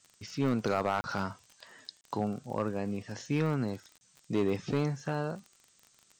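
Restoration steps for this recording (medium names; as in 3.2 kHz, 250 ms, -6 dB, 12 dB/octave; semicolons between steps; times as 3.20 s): clip repair -21 dBFS; de-click; interpolate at 1.01/2.01/3.98 s, 30 ms; noise print and reduce 12 dB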